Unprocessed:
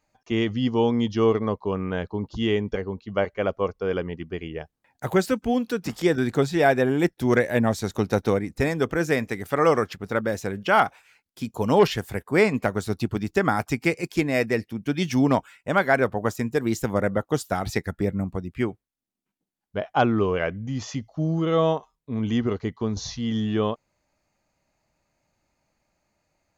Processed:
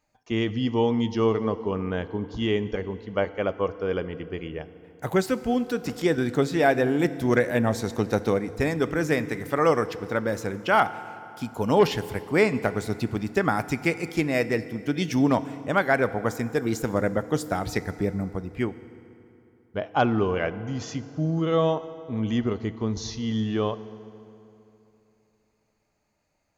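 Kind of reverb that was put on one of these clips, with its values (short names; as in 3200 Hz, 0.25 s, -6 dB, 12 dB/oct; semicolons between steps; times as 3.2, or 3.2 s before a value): FDN reverb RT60 3 s, high-frequency decay 0.7×, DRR 13.5 dB; gain -1.5 dB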